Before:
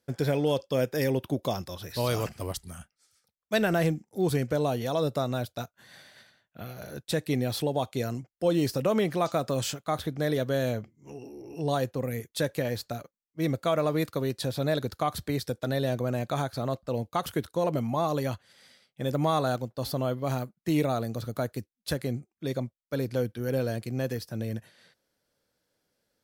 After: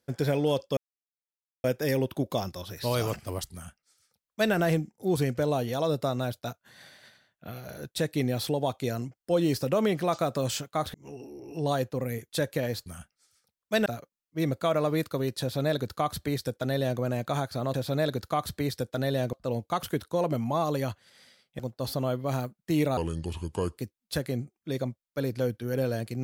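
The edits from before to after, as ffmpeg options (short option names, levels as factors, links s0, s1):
-filter_complex "[0:a]asplit=10[s0][s1][s2][s3][s4][s5][s6][s7][s8][s9];[s0]atrim=end=0.77,asetpts=PTS-STARTPTS,afade=t=out:st=0.766:d=0.004:c=hsin,apad=pad_dur=0.87[s10];[s1]atrim=start=0.77:end=10.072,asetpts=PTS-STARTPTS,afade=t=in:d=0.004:c=hsin[s11];[s2]atrim=start=10.958:end=12.882[s12];[s3]atrim=start=2.658:end=3.662[s13];[s4]atrim=start=12.878:end=16.762[s14];[s5]atrim=start=14.428:end=16.022[s15];[s6]atrim=start=16.758:end=19.022[s16];[s7]atrim=start=19.568:end=20.954[s17];[s8]atrim=start=20.95:end=21.53,asetpts=PTS-STARTPTS,asetrate=31752,aresample=44100[s18];[s9]atrim=start=21.526[s19];[s10][s11]concat=n=2:v=0:a=1[s20];[s20][s12]acrossfade=d=0.004:c1=hsin:c2=hsin[s21];[s21][s13]acrossfade=d=0.004:c1=hsin:c2=hsin[s22];[s22][s14]acrossfade=d=0.004:c1=hsin:c2=hsin[s23];[s23][s15]acrossfade=d=0.004:c1=hsin:c2=hsin[s24];[s24][s16]acrossfade=d=0.004:c1=hsin:c2=hsin[s25];[s25][s17]acrossfade=d=0.004:c1=hsin:c2=hsin[s26];[s26][s18]acrossfade=d=0.004:c1=hsin:c2=hsin[s27];[s27][s19]acrossfade=d=0.004:c1=hsin:c2=hsin"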